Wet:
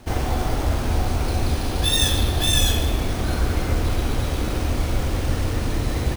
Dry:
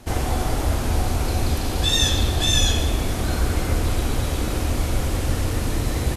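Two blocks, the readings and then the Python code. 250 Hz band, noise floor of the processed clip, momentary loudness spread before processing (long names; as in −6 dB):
0.0 dB, −26 dBFS, 6 LU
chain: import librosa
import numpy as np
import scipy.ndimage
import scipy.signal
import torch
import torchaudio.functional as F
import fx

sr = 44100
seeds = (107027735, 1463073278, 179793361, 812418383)

y = np.repeat(scipy.signal.resample_poly(x, 1, 3), 3)[:len(x)]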